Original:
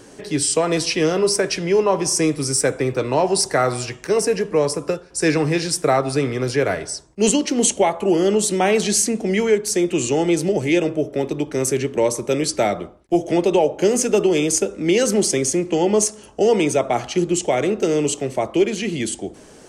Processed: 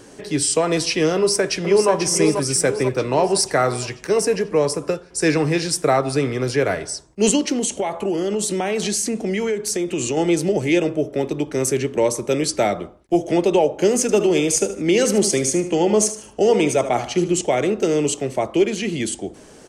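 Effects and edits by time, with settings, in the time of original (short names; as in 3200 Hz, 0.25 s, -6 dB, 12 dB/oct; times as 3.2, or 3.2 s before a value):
1.15–1.9 echo throw 0.49 s, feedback 55%, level -6.5 dB
7.56–10.17 compressor, threshold -18 dBFS
14.01–17.41 feedback echo 76 ms, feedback 32%, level -12 dB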